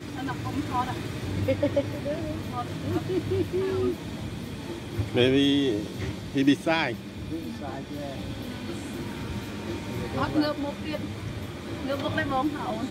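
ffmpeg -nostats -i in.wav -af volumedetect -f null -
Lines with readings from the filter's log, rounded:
mean_volume: -28.5 dB
max_volume: -7.9 dB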